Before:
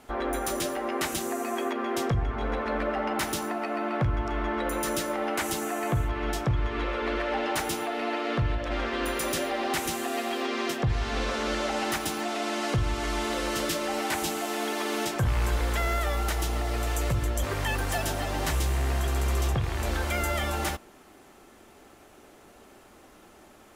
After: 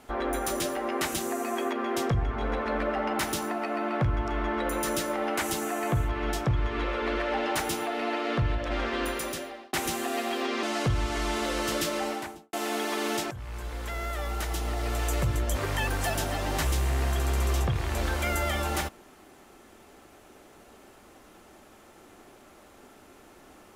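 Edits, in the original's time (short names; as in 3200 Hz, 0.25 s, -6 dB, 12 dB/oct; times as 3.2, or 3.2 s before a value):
8.99–9.73 fade out
10.63–12.51 cut
13.84–14.41 studio fade out
15.19–16.97 fade in, from -16.5 dB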